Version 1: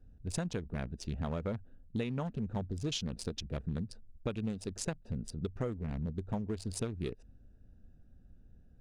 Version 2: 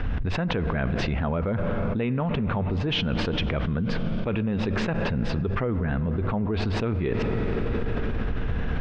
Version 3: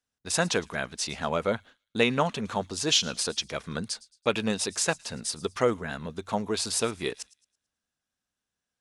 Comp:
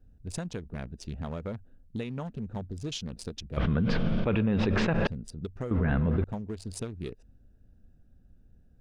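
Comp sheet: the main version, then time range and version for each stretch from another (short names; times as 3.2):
1
3.57–5.07 from 2
5.71–6.24 from 2
not used: 3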